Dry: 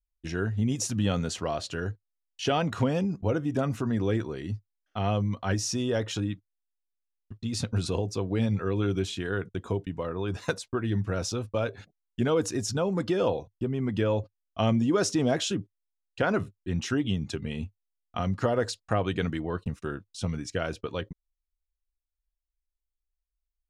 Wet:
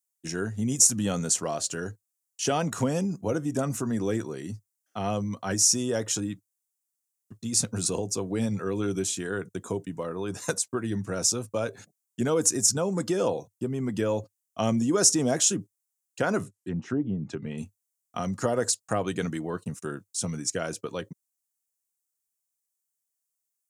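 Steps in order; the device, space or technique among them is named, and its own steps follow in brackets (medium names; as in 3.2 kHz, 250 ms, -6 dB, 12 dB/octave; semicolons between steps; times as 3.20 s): 16.44–17.58 s: low-pass that closes with the level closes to 740 Hz, closed at -24.5 dBFS; budget condenser microphone (high-pass 120 Hz 24 dB/octave; resonant high shelf 5.2 kHz +13.5 dB, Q 1.5)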